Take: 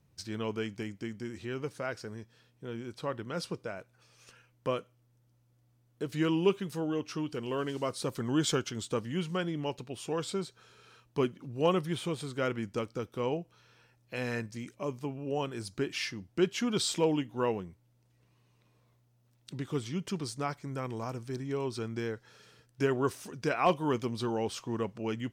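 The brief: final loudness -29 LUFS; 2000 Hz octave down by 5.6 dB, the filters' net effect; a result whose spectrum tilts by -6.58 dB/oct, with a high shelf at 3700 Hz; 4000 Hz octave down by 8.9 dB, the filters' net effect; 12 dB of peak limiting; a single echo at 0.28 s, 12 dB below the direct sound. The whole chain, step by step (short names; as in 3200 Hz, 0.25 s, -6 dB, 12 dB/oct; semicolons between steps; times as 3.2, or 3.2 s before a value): bell 2000 Hz -4.5 dB; high shelf 3700 Hz -6 dB; bell 4000 Hz -6.5 dB; limiter -27 dBFS; echo 0.28 s -12 dB; gain +9 dB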